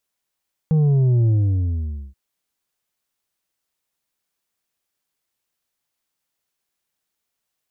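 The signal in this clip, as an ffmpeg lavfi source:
ffmpeg -f lavfi -i "aevalsrc='0.2*clip((1.43-t)/0.86,0,1)*tanh(1.88*sin(2*PI*160*1.43/log(65/160)*(exp(log(65/160)*t/1.43)-1)))/tanh(1.88)':duration=1.43:sample_rate=44100" out.wav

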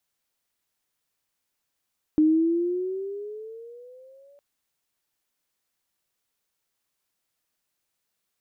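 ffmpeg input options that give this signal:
ffmpeg -f lavfi -i "aevalsrc='pow(10,(-14.5-37*t/2.21)/20)*sin(2*PI*305*2.21/(11*log(2)/12)*(exp(11*log(2)/12*t/2.21)-1))':duration=2.21:sample_rate=44100" out.wav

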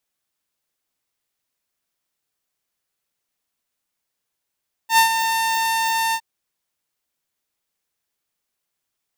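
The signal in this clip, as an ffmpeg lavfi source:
ffmpeg -f lavfi -i "aevalsrc='0.422*(2*mod(903*t,1)-1)':duration=1.312:sample_rate=44100,afade=type=in:duration=0.09,afade=type=out:start_time=0.09:duration=0.106:silence=0.376,afade=type=out:start_time=1.25:duration=0.062" out.wav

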